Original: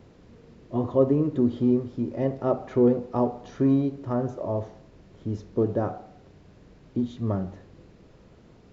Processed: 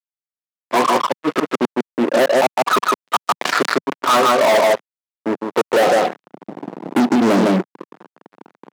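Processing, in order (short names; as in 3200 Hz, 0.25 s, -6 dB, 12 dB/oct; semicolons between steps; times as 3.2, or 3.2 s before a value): flipped gate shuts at -14 dBFS, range -35 dB; reverb removal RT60 0.94 s; band-pass sweep 1200 Hz -> 320 Hz, 5.34–6.22; limiter -31 dBFS, peak gain reduction 10.5 dB; 5.87–7 low shelf 260 Hz +10.5 dB; spectral noise reduction 17 dB; LFO low-pass sine 0.36 Hz 630–2700 Hz; echo 0.155 s -4 dB; fuzz box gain 47 dB, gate -54 dBFS; HPF 180 Hz 24 dB/oct; 3.22–3.93 fast leveller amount 70%; gain +2 dB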